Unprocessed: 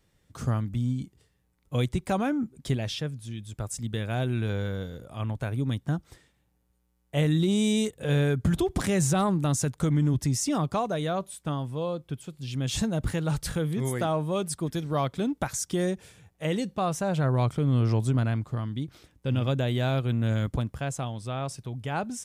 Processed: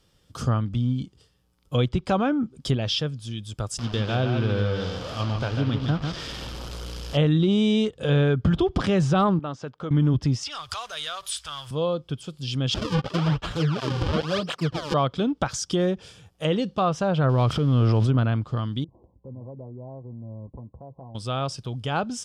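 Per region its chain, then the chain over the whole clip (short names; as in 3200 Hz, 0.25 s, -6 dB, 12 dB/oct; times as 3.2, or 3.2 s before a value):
3.78–7.17 delta modulation 64 kbps, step -34 dBFS + bell 9300 Hz -10 dB 0.92 oct + echo 0.148 s -5.5 dB
9.39–9.91 HPF 690 Hz 6 dB/oct + tape spacing loss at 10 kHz 39 dB
10.43–11.71 G.711 law mismatch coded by mu + compressor 4:1, threshold -33 dBFS + EQ curve 100 Hz 0 dB, 190 Hz -29 dB, 1700 Hz +8 dB
12.74–14.94 comb 6.8 ms, depth 56% + decimation with a swept rate 38×, swing 160% 1 Hz + tape flanging out of phase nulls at 1.4 Hz, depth 7.8 ms
17.29–18.09 switching spikes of -30 dBFS + transient shaper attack -4 dB, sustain +9 dB
18.84–21.15 brick-wall FIR low-pass 1100 Hz + notch comb 150 Hz + compressor 2:1, threshold -53 dBFS
whole clip: treble ducked by the level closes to 2800 Hz, closed at -23 dBFS; thirty-one-band EQ 500 Hz +3 dB, 1250 Hz +5 dB, 2000 Hz -6 dB, 3150 Hz +8 dB, 5000 Hz +9 dB; gain +3.5 dB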